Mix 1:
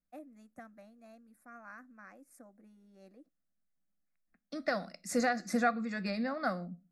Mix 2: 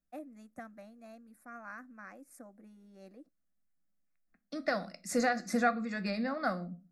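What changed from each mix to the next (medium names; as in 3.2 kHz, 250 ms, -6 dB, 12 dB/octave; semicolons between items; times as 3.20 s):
first voice +4.0 dB; second voice: send +6.0 dB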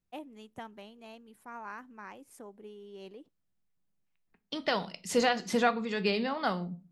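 master: remove static phaser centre 620 Hz, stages 8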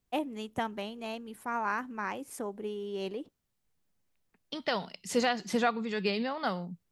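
first voice +11.0 dB; reverb: off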